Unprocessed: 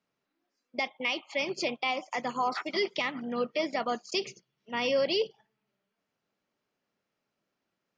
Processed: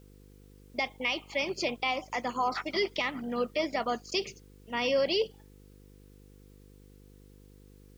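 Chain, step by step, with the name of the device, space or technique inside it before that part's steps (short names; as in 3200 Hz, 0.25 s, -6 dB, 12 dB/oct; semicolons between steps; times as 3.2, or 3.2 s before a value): video cassette with head-switching buzz (buzz 50 Hz, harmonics 10, -55 dBFS -4 dB/oct; white noise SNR 35 dB)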